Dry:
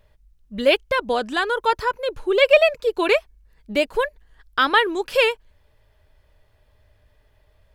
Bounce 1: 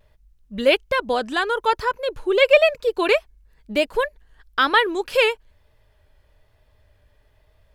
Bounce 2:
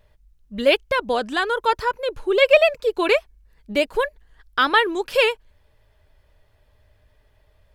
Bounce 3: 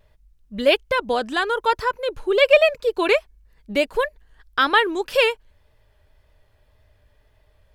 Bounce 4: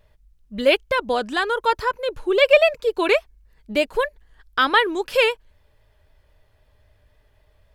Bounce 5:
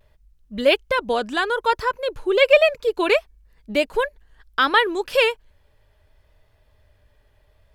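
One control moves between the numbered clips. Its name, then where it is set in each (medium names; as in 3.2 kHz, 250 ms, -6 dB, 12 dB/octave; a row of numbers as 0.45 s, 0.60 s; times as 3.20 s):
vibrato, rate: 1.1 Hz, 11 Hz, 1.8 Hz, 3.8 Hz, 0.66 Hz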